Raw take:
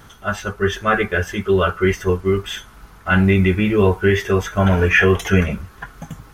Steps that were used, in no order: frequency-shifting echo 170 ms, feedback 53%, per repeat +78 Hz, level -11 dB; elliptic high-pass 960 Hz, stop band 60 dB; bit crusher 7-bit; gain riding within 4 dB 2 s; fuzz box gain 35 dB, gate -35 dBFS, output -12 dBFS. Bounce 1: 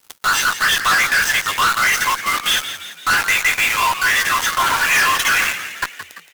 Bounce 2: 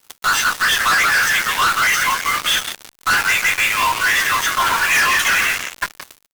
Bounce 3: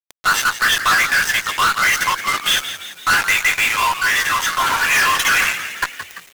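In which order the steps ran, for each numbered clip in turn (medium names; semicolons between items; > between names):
gain riding > elliptic high-pass > bit crusher > fuzz box > frequency-shifting echo; gain riding > elliptic high-pass > bit crusher > frequency-shifting echo > fuzz box; elliptic high-pass > fuzz box > frequency-shifting echo > gain riding > bit crusher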